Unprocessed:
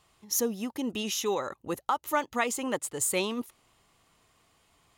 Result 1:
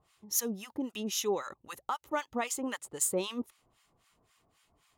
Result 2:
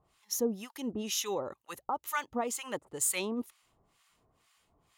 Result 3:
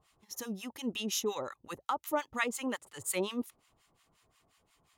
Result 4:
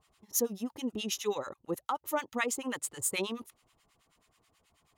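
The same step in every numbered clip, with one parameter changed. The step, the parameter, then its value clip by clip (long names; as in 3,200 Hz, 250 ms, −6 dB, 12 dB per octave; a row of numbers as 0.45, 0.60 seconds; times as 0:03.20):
two-band tremolo in antiphase, speed: 3.8, 2.1, 5.6, 9.3 Hertz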